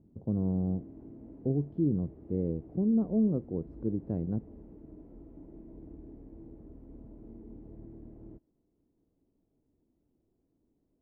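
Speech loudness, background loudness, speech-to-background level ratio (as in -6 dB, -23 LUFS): -32.0 LUFS, -51.0 LUFS, 19.0 dB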